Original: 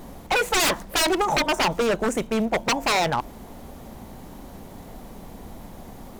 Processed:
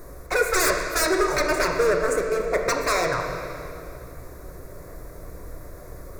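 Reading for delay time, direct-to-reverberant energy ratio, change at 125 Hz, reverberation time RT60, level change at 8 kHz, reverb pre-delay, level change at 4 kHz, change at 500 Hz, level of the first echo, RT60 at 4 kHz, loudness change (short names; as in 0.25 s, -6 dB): none, 2.0 dB, -1.0 dB, 2.5 s, +0.5 dB, 12 ms, -6.0 dB, +3.0 dB, none, 2.2 s, -0.5 dB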